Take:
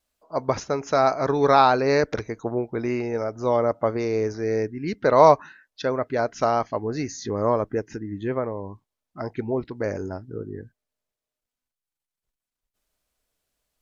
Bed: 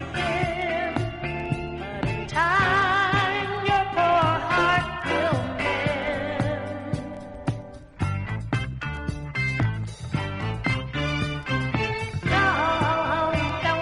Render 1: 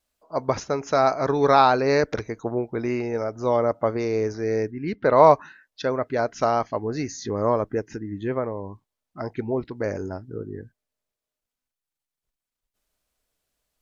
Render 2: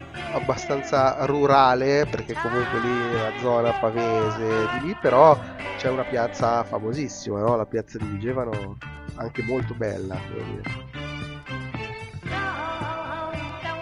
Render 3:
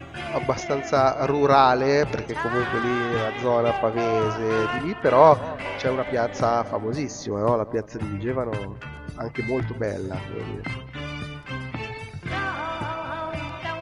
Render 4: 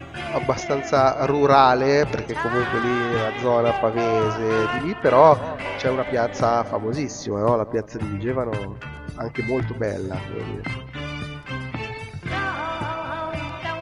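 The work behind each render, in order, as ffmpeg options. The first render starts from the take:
-filter_complex "[0:a]asettb=1/sr,asplit=3[a][b][c];[a]atrim=end=4.714[d];[b]atrim=start=4.71:end=5.31,asetpts=PTS-STARTPTS,afade=t=in:d=0.004:c=qsin,afade=t=out:st=0.596:d=0.004:c=qsin,lowpass=3.4k[e];[c]atrim=start=5.306[f];[d][e]acrossfade=d=0.004:c1=hsin:c2=qsin[g];[g][f]acrossfade=d=0.004:c1=qsin:c2=hsin"
-filter_complex "[1:a]volume=-7dB[a];[0:a][a]amix=inputs=2:normalize=0"
-filter_complex "[0:a]asplit=2[a][b];[b]adelay=224,lowpass=f=2k:p=1,volume=-19.5dB,asplit=2[c][d];[d]adelay=224,lowpass=f=2k:p=1,volume=0.51,asplit=2[e][f];[f]adelay=224,lowpass=f=2k:p=1,volume=0.51,asplit=2[g][h];[h]adelay=224,lowpass=f=2k:p=1,volume=0.51[i];[a][c][e][g][i]amix=inputs=5:normalize=0"
-af "volume=2dB,alimiter=limit=-2dB:level=0:latency=1"

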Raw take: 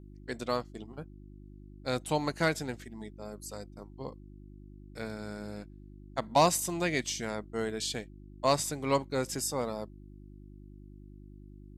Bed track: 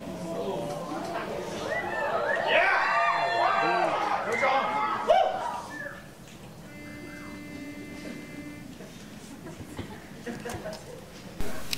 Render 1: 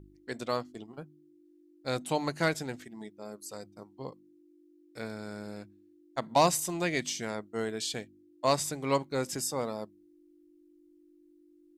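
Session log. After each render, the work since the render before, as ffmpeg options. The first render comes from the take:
-af "bandreject=f=50:t=h:w=4,bandreject=f=100:t=h:w=4,bandreject=f=150:t=h:w=4,bandreject=f=200:t=h:w=4,bandreject=f=250:t=h:w=4"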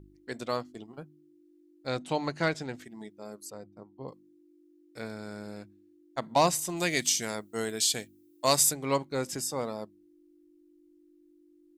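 -filter_complex "[0:a]asettb=1/sr,asplit=3[a][b][c];[a]atrim=end=1.874[d];[b]atrim=start=1.87:end=2.75,asetpts=PTS-STARTPTS,afade=t=in:d=0.004:c=qsin,afade=t=out:st=0.876:d=0.004:c=qsin,lowpass=6k[e];[c]atrim=start=2.746[f];[d][e]acrossfade=d=0.004:c1=hsin:c2=qsin[g];[g][f]acrossfade=d=0.004:c1=qsin:c2=hsin,asettb=1/sr,asplit=3[h][i][j];[h]atrim=end=3.504[k];[i]atrim=start=3.5:end=4.08,asetpts=PTS-STARTPTS,afade=t=in:d=0.004:c=qsin,afade=t=out:st=0.576:d=0.004:c=qsin,lowpass=f=1.1k:p=1[l];[j]atrim=start=4.076[m];[k][l]acrossfade=d=0.004:c1=hsin:c2=qsin[n];[n][m]acrossfade=d=0.004:c1=qsin:c2=hsin,asplit=3[o][p][q];[o]afade=t=out:st=6.76:d=0.02[r];[p]aemphasis=mode=production:type=75kf,afade=t=in:st=6.76:d=0.02,afade=t=out:st=8.72:d=0.02[s];[q]afade=t=in:st=8.72:d=0.02[t];[r][s][t]amix=inputs=3:normalize=0"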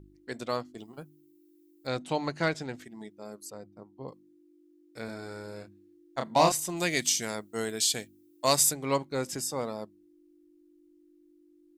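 -filter_complex "[0:a]asettb=1/sr,asplit=3[a][b][c];[a]atrim=end=0.784[d];[b]atrim=start=0.78:end=1.87,asetpts=PTS-STARTPTS,afade=t=in:d=0.004:c=qsin,afade=t=out:st=1.086:d=0.004:c=qsin,aemphasis=mode=production:type=50fm[e];[c]atrim=start=1.866[f];[d][e]acrossfade=d=0.004:c1=hsin:c2=qsin[g];[g][f]acrossfade=d=0.004:c1=qsin:c2=hsin,asettb=1/sr,asplit=3[h][i][j];[h]atrim=end=5.054[k];[i]atrim=start=5.05:end=6.52,asetpts=PTS-STARTPTS,afade=t=in:d=0.004:c=qsin,afade=t=out:st=1.466:d=0.004:c=qsin,asplit=2[l][m];[m]adelay=31,volume=-4.5dB[n];[l][n]amix=inputs=2:normalize=0,atrim=end_sample=64827[o];[j]atrim=start=6.516[p];[k][o]acrossfade=d=0.004:c1=hsin:c2=qsin[q];[q][p]acrossfade=d=0.004:c1=qsin:c2=hsin"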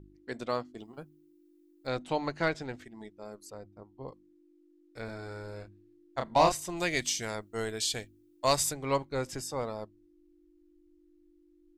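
-af "lowpass=f=3.7k:p=1,asubboost=boost=9:cutoff=60"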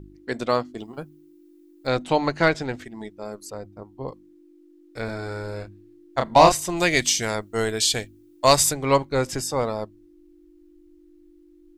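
-af "volume=10dB,alimiter=limit=-2dB:level=0:latency=1"

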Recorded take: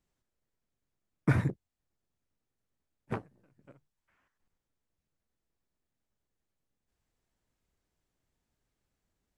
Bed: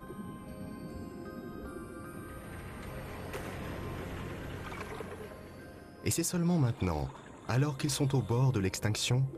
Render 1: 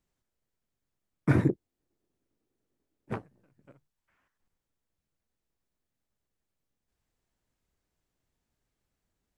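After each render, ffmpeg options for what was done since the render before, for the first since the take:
-filter_complex "[0:a]asettb=1/sr,asplit=3[a][b][c];[a]atrim=end=1.304[d];[b]atrim=start=1.3:end=3.12,asetpts=PTS-STARTPTS,afade=t=in:d=0.004:c=qsin,afade=t=out:st=1.816:d=0.004:c=qsin,equalizer=f=340:t=o:w=1.3:g=13.5[e];[c]atrim=start=3.116[f];[d][e]acrossfade=d=0.004:c1=hsin:c2=qsin[g];[g][f]acrossfade=d=0.004:c1=qsin:c2=hsin"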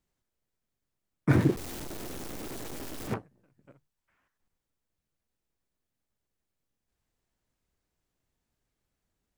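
-filter_complex "[0:a]asettb=1/sr,asplit=3[a][b][c];[a]atrim=end=1.304[d];[b]atrim=start=1.3:end=3.14,asetpts=PTS-STARTPTS,afade=t=in:d=0.004:c=qsin,afade=t=out:st=1.836:d=0.004:c=qsin,aeval=exprs='val(0)+0.5*0.0251*sgn(val(0))':c=same[e];[c]atrim=start=3.136[f];[d][e]acrossfade=d=0.004:c1=hsin:c2=qsin[g];[g][f]acrossfade=d=0.004:c1=qsin:c2=hsin"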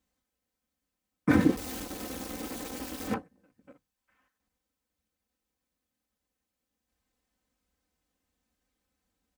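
-af "highpass=50,aecho=1:1:3.9:0.83"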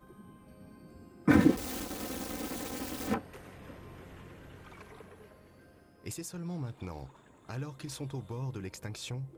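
-filter_complex "[1:a]volume=-9.5dB[a];[0:a][a]amix=inputs=2:normalize=0"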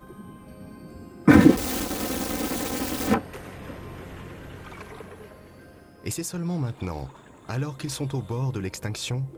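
-af "volume=10dB,alimiter=limit=-3dB:level=0:latency=1"

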